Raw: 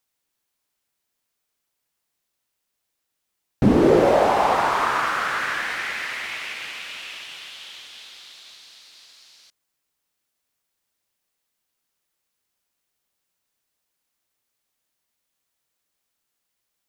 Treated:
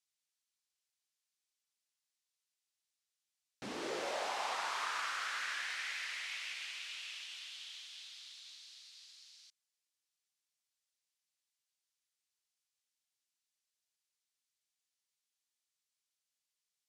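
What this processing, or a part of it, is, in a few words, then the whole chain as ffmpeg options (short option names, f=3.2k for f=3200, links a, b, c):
piezo pickup straight into a mixer: -af "lowpass=6k,aderivative,volume=-2dB"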